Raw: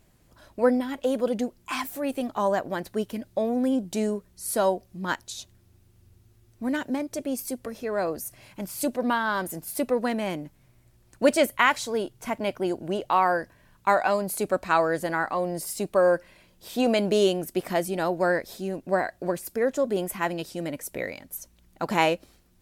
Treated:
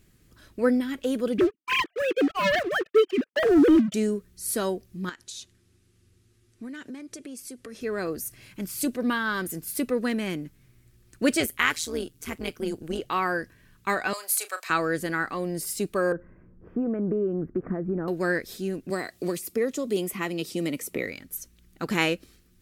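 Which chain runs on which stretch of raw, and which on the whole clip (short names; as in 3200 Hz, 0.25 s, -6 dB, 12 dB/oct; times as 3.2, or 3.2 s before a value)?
1.38–3.94 sine-wave speech + expander -52 dBFS + sample leveller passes 3
5.09–7.81 low shelf 150 Hz -10.5 dB + compressor, threshold -36 dBFS + LPF 11000 Hz 24 dB/oct
11.4–12.99 high shelf 3800 Hz +6.5 dB + AM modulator 160 Hz, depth 75%
14.13–14.7 HPF 700 Hz 24 dB/oct + high shelf 3600 Hz +6.5 dB + doubler 35 ms -11 dB
16.12–18.08 inverse Chebyshev low-pass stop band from 3600 Hz, stop band 50 dB + low shelf 440 Hz +7.5 dB + compressor 5:1, threshold -24 dBFS
18.9–21.06 HPF 150 Hz 6 dB/oct + bell 1600 Hz -15 dB 0.22 oct + three-band squash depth 70%
whole clip: band shelf 750 Hz -11 dB 1.1 oct; notch 1400 Hz, Q 20; gain +1.5 dB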